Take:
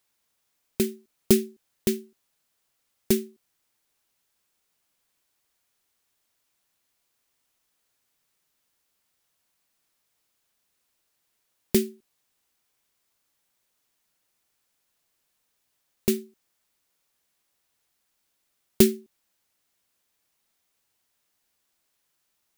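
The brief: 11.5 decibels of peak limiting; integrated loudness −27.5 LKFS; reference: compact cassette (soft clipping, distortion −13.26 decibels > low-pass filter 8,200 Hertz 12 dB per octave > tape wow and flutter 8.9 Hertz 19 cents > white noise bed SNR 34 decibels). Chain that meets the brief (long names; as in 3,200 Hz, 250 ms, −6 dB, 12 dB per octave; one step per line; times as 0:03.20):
brickwall limiter −13 dBFS
soft clipping −21 dBFS
low-pass filter 8,200 Hz 12 dB per octave
tape wow and flutter 8.9 Hz 19 cents
white noise bed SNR 34 dB
level +7.5 dB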